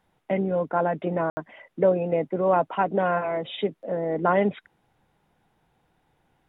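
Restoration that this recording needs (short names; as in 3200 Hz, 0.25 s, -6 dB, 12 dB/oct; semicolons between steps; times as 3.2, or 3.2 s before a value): room tone fill 1.3–1.37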